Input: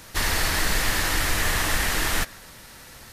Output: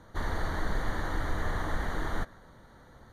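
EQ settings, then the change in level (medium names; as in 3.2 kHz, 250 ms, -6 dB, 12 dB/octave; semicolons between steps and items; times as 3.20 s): boxcar filter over 17 samples; -4.5 dB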